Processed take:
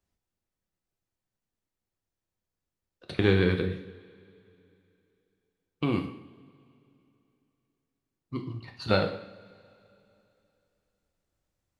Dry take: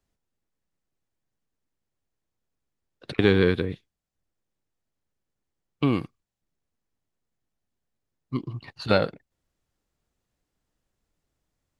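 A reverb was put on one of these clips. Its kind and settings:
coupled-rooms reverb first 0.61 s, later 3 s, from −21 dB, DRR 3.5 dB
level −4.5 dB

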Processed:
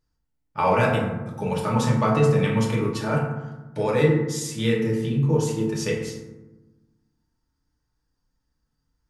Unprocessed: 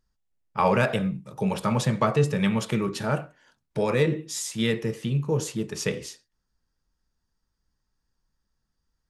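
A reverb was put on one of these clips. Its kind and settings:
feedback delay network reverb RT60 1.1 s, low-frequency decay 1.5×, high-frequency decay 0.4×, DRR −3 dB
level −3 dB

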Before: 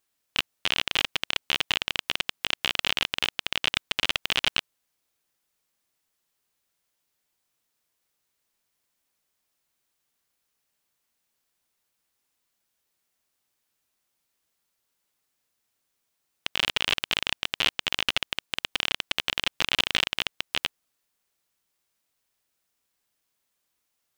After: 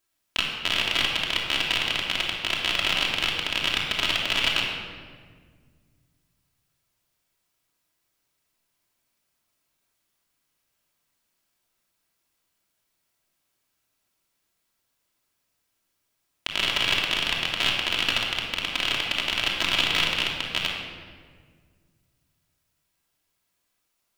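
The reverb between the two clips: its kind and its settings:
rectangular room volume 2,200 cubic metres, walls mixed, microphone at 2.9 metres
level −1.5 dB

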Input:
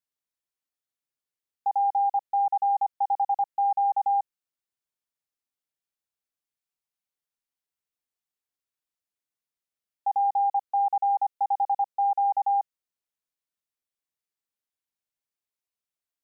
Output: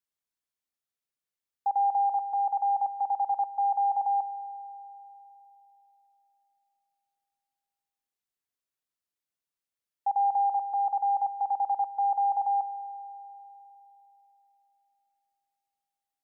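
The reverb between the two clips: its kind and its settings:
spring reverb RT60 3.5 s, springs 51 ms, chirp 35 ms, DRR 13 dB
level −1.5 dB

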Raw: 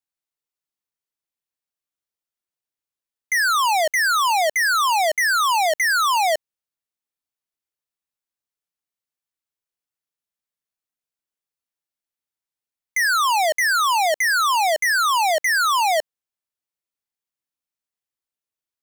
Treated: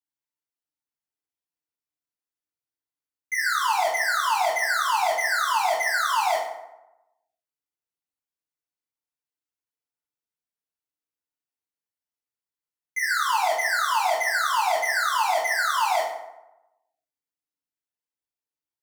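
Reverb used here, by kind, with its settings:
feedback delay network reverb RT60 0.95 s, low-frequency decay 1×, high-frequency decay 0.55×, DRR −7.5 dB
level −13 dB

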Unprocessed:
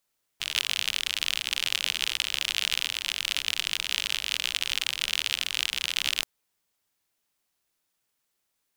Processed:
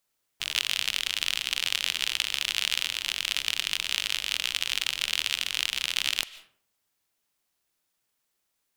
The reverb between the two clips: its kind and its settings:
comb and all-pass reverb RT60 0.55 s, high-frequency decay 0.6×, pre-delay 105 ms, DRR 17 dB

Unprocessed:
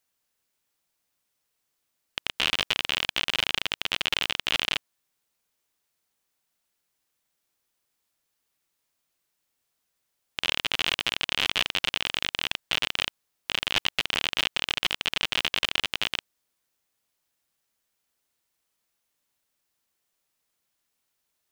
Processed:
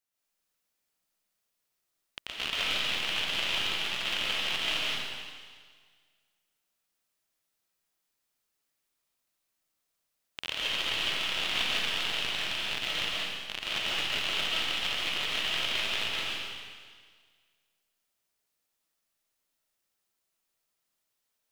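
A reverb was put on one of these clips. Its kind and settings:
comb and all-pass reverb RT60 1.7 s, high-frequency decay 1×, pre-delay 95 ms, DRR −6.5 dB
level −10 dB

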